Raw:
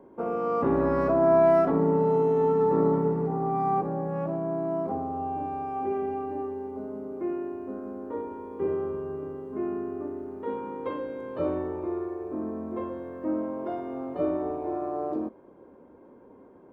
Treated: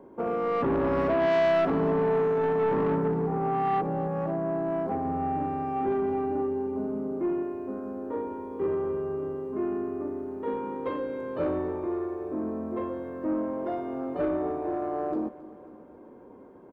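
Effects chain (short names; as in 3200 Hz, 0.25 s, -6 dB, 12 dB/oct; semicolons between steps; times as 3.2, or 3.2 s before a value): 5.05–7.43 bell 150 Hz +7.5 dB 1.7 oct; soft clip -22.5 dBFS, distortion -11 dB; feedback echo 0.27 s, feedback 59%, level -18 dB; gain +2 dB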